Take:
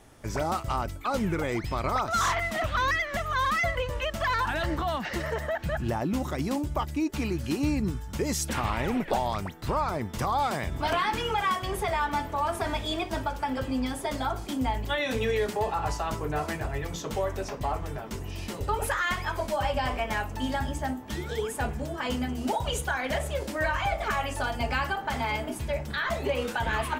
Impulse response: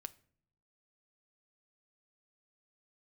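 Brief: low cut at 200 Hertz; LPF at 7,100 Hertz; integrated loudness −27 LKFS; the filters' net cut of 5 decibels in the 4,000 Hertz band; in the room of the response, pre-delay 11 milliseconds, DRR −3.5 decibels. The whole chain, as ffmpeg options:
-filter_complex "[0:a]highpass=200,lowpass=7100,equalizer=frequency=4000:width_type=o:gain=-6.5,asplit=2[link_01][link_02];[1:a]atrim=start_sample=2205,adelay=11[link_03];[link_02][link_03]afir=irnorm=-1:irlink=0,volume=8dB[link_04];[link_01][link_04]amix=inputs=2:normalize=0,volume=-1dB"

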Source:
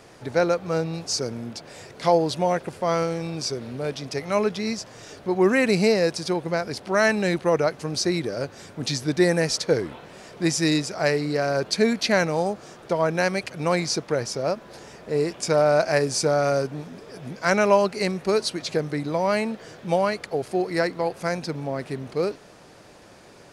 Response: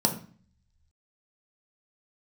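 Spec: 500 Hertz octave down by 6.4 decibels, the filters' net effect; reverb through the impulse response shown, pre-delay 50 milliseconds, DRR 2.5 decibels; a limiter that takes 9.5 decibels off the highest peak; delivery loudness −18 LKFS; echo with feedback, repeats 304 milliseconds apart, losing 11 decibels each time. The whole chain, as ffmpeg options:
-filter_complex "[0:a]equalizer=frequency=500:width_type=o:gain=-8,alimiter=limit=-17.5dB:level=0:latency=1,aecho=1:1:304|608|912:0.282|0.0789|0.0221,asplit=2[link_01][link_02];[1:a]atrim=start_sample=2205,adelay=50[link_03];[link_02][link_03]afir=irnorm=-1:irlink=0,volume=-13dB[link_04];[link_01][link_04]amix=inputs=2:normalize=0,volume=5.5dB"

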